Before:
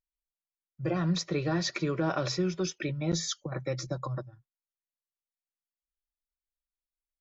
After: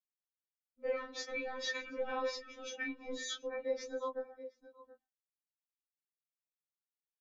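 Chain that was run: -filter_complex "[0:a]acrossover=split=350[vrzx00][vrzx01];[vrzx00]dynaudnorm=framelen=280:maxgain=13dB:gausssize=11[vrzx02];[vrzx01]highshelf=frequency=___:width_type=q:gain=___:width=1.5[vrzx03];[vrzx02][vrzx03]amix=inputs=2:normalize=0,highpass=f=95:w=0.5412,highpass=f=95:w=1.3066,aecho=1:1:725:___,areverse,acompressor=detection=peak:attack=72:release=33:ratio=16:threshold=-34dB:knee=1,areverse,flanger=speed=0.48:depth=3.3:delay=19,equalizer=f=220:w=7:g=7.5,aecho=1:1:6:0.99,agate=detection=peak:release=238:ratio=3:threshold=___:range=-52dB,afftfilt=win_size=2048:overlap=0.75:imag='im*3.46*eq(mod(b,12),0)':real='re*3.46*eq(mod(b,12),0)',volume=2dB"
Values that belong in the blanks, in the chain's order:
4.2k, -7, 0.0708, -48dB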